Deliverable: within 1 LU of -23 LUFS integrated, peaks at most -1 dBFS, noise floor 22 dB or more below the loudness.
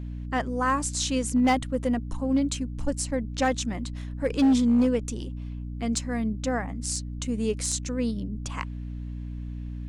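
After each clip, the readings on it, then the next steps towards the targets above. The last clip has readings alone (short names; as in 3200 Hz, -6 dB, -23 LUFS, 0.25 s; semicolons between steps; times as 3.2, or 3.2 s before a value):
clipped 0.6%; flat tops at -16.0 dBFS; hum 60 Hz; harmonics up to 300 Hz; hum level -32 dBFS; loudness -27.5 LUFS; peak -16.0 dBFS; loudness target -23.0 LUFS
-> clip repair -16 dBFS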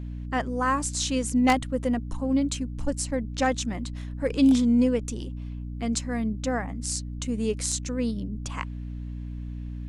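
clipped 0.0%; hum 60 Hz; harmonics up to 300 Hz; hum level -32 dBFS
-> de-hum 60 Hz, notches 5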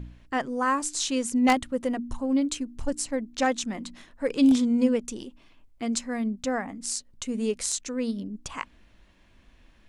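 hum none; loudness -27.0 LUFS; peak -7.0 dBFS; loudness target -23.0 LUFS
-> gain +4 dB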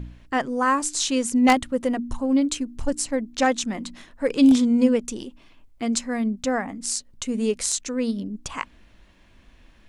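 loudness -23.0 LUFS; peak -3.0 dBFS; noise floor -54 dBFS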